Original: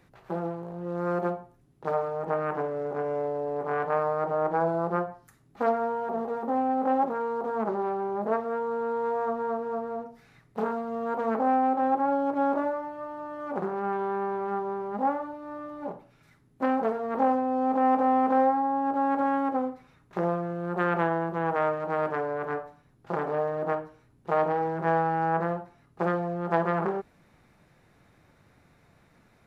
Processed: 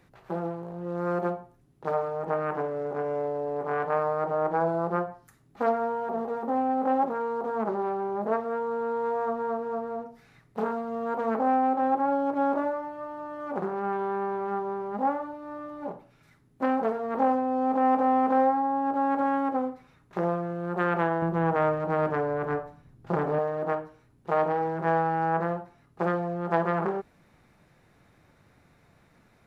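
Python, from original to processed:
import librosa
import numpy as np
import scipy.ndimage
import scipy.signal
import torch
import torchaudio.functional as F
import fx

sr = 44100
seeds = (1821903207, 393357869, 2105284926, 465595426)

y = fx.low_shelf(x, sr, hz=250.0, db=10.5, at=(21.22, 23.39))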